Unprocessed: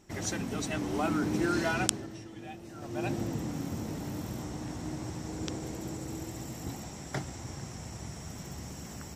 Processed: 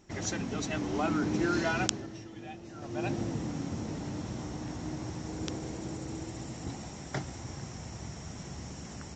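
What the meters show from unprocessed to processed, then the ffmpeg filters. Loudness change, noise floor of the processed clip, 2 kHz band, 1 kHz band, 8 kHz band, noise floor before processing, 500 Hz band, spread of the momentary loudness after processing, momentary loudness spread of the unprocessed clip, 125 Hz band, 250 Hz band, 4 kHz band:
0.0 dB, −45 dBFS, 0.0 dB, 0.0 dB, −2.0 dB, −45 dBFS, 0.0 dB, 13 LU, 13 LU, 0.0 dB, 0.0 dB, 0.0 dB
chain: -af "aresample=16000,aresample=44100"

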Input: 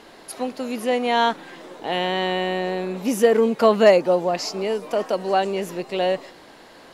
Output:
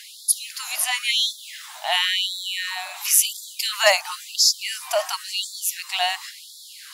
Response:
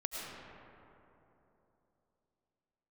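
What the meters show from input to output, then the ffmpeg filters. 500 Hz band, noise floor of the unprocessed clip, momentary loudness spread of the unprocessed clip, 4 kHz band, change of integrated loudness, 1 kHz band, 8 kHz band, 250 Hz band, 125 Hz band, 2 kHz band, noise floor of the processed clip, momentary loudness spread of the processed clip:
−11.5 dB, −47 dBFS, 14 LU, +9.5 dB, 0.0 dB, −6.0 dB, +16.5 dB, below −40 dB, below −40 dB, +3.5 dB, −43 dBFS, 14 LU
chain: -af "crystalizer=i=5:c=0,afftfilt=real='re*gte(b*sr/1024,590*pow(3400/590,0.5+0.5*sin(2*PI*0.95*pts/sr)))':imag='im*gte(b*sr/1024,590*pow(3400/590,0.5+0.5*sin(2*PI*0.95*pts/sr)))':win_size=1024:overlap=0.75,volume=1dB"

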